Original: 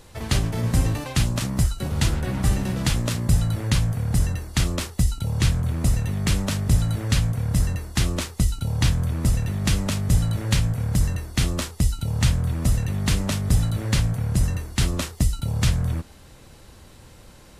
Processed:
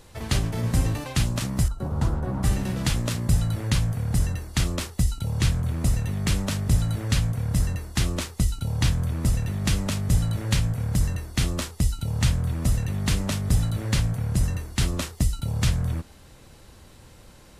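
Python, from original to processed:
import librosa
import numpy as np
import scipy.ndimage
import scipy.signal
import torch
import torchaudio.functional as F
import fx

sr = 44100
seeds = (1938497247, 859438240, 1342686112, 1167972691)

y = fx.high_shelf_res(x, sr, hz=1600.0, db=-12.5, q=1.5, at=(1.68, 2.43))
y = y * librosa.db_to_amplitude(-2.0)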